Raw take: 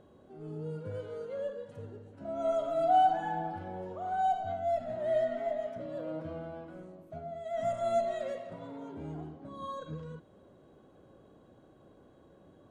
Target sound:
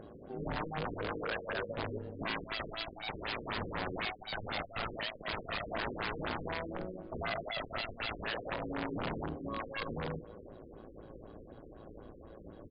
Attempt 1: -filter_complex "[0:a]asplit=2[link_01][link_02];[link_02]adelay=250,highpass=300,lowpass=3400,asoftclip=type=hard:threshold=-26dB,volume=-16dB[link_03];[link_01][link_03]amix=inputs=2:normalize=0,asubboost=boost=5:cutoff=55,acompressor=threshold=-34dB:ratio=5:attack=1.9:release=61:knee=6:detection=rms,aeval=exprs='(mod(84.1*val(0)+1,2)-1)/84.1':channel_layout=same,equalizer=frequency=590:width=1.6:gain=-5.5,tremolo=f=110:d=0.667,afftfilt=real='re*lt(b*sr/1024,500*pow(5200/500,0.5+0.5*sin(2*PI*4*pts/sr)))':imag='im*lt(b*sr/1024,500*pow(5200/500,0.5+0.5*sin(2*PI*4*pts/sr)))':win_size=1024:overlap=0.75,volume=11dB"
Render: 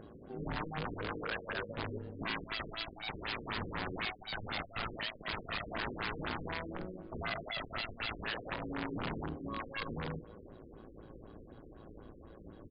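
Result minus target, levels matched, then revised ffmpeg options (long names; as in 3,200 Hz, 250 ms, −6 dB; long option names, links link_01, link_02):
500 Hz band −2.5 dB
-filter_complex "[0:a]asplit=2[link_01][link_02];[link_02]adelay=250,highpass=300,lowpass=3400,asoftclip=type=hard:threshold=-26dB,volume=-16dB[link_03];[link_01][link_03]amix=inputs=2:normalize=0,asubboost=boost=5:cutoff=55,acompressor=threshold=-34dB:ratio=5:attack=1.9:release=61:knee=6:detection=rms,aeval=exprs='(mod(84.1*val(0)+1,2)-1)/84.1':channel_layout=same,tremolo=f=110:d=0.667,afftfilt=real='re*lt(b*sr/1024,500*pow(5200/500,0.5+0.5*sin(2*PI*4*pts/sr)))':imag='im*lt(b*sr/1024,500*pow(5200/500,0.5+0.5*sin(2*PI*4*pts/sr)))':win_size=1024:overlap=0.75,volume=11dB"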